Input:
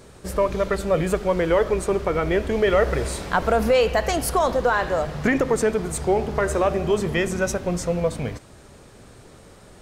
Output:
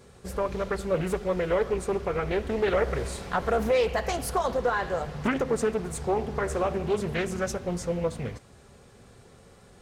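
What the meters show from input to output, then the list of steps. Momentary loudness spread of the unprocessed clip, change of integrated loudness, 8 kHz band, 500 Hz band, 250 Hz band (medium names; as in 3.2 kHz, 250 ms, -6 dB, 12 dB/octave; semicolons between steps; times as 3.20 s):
6 LU, -6.0 dB, -7.5 dB, -6.0 dB, -6.0 dB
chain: comb of notches 310 Hz; loudspeaker Doppler distortion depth 0.44 ms; trim -5 dB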